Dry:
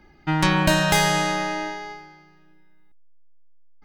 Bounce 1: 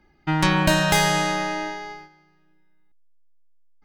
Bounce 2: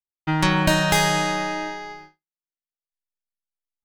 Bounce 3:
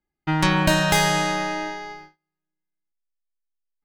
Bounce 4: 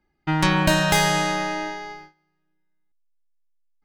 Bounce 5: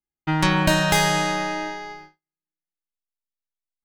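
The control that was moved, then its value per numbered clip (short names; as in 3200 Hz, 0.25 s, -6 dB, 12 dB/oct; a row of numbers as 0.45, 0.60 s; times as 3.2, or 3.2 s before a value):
gate, range: -7, -58, -32, -19, -44 dB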